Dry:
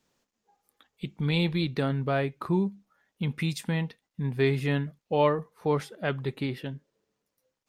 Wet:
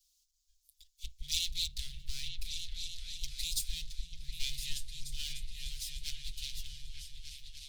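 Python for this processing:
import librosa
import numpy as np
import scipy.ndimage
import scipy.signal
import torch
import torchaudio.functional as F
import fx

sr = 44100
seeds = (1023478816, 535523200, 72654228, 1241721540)

p1 = fx.lower_of_two(x, sr, delay_ms=6.5)
p2 = scipy.signal.sosfilt(scipy.signal.cheby2(4, 70, [210.0, 1100.0], 'bandstop', fs=sr, output='sos'), p1)
p3 = p2 + fx.echo_opening(p2, sr, ms=298, hz=200, octaves=2, feedback_pct=70, wet_db=0, dry=0)
y = p3 * 10.0 ** (7.5 / 20.0)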